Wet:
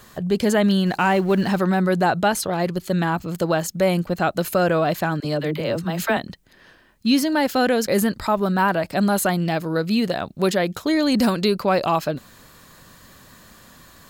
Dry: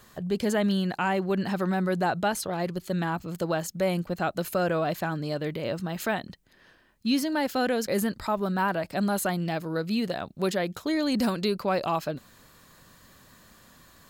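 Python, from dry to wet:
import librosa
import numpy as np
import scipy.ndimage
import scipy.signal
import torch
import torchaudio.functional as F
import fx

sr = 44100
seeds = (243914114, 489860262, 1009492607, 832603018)

y = fx.law_mismatch(x, sr, coded='mu', at=(0.86, 1.59))
y = fx.dispersion(y, sr, late='lows', ms=46.0, hz=440.0, at=(5.2, 6.17))
y = y * 10.0 ** (7.0 / 20.0)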